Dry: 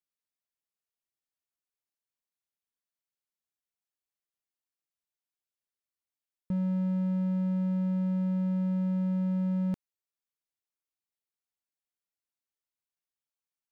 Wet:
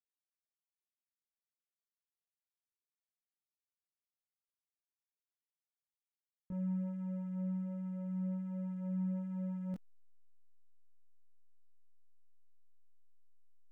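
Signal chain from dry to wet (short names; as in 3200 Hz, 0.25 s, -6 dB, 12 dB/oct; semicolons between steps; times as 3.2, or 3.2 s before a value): backlash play -45.5 dBFS; detuned doubles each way 11 cents; gain -6 dB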